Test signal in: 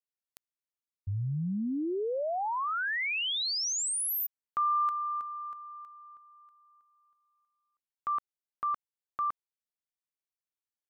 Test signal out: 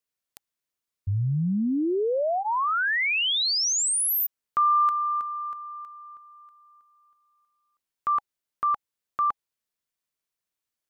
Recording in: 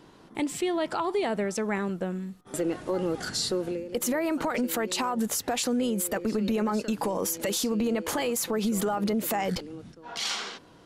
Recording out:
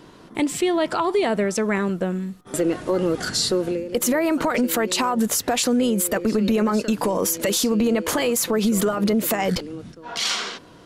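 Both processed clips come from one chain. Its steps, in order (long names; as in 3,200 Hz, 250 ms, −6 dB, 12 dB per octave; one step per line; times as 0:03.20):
notch filter 820 Hz, Q 12
level +7 dB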